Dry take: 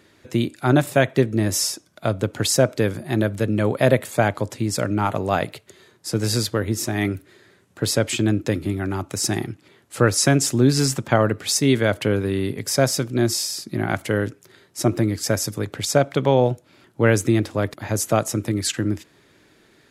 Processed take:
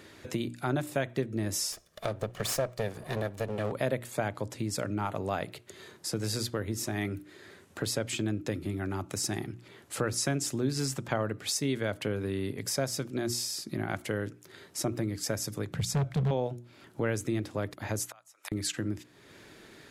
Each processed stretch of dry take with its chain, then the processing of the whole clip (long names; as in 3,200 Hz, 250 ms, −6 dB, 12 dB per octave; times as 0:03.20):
0:01.72–0:03.72: lower of the sound and its delayed copy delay 1.7 ms + low-shelf EQ 71 Hz −11 dB
0:15.70–0:16.31: low shelf with overshoot 230 Hz +10 dB, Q 3 + gain into a clipping stage and back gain 12 dB
0:18.06–0:18.52: high-pass filter 810 Hz 24 dB per octave + gate with flip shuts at −23 dBFS, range −28 dB
whole clip: mains-hum notches 60/120/180/240/300/360 Hz; downward compressor 2 to 1, threshold −44 dBFS; level +3.5 dB